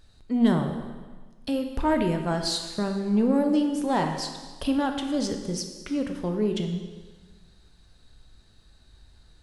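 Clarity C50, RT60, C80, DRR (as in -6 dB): 6.5 dB, 1.4 s, 8.0 dB, 4.5 dB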